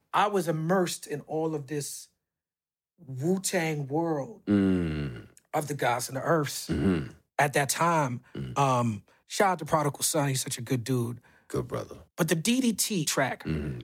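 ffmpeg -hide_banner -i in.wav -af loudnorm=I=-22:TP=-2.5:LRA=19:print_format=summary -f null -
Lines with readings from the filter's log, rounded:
Input Integrated:    -28.4 LUFS
Input True Peak:     -10.0 dBTP
Input LRA:             3.2 LU
Input Threshold:     -38.7 LUFS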